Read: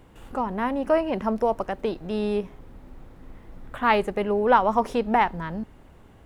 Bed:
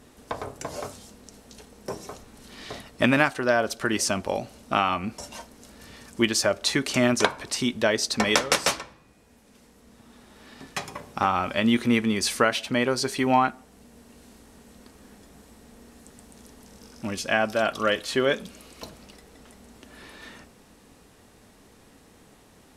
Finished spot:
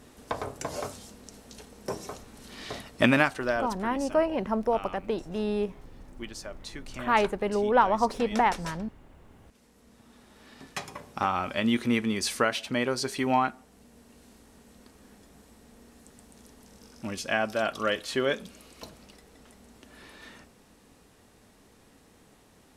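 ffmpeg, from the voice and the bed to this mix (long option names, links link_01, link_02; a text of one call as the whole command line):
ffmpeg -i stem1.wav -i stem2.wav -filter_complex "[0:a]adelay=3250,volume=-3dB[link_01];[1:a]volume=14dB,afade=type=out:start_time=3:duration=0.9:silence=0.125893,afade=type=in:start_time=9.09:duration=0.73:silence=0.199526[link_02];[link_01][link_02]amix=inputs=2:normalize=0" out.wav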